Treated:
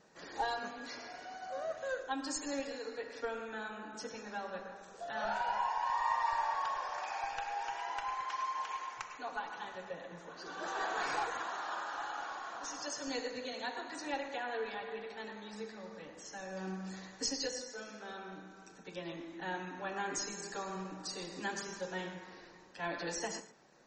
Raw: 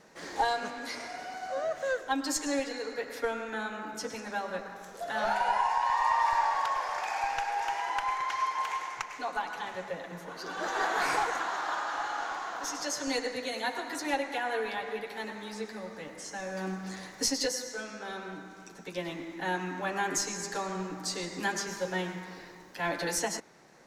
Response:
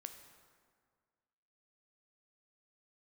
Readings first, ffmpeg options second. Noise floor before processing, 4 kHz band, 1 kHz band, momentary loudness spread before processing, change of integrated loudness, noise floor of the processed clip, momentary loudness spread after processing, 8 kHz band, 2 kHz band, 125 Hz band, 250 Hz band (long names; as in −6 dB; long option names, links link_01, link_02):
−49 dBFS, −6.5 dB, −7.0 dB, 12 LU, −7.0 dB, −55 dBFS, 11 LU, −8.0 dB, −7.5 dB, −7.0 dB, −7.0 dB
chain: -filter_complex "[0:a]bandreject=frequency=2100:width=12[link_01];[1:a]atrim=start_sample=2205,afade=type=out:start_time=0.2:duration=0.01,atrim=end_sample=9261[link_02];[link_01][link_02]afir=irnorm=-1:irlink=0,volume=-1.5dB" -ar 48000 -c:a libmp3lame -b:a 32k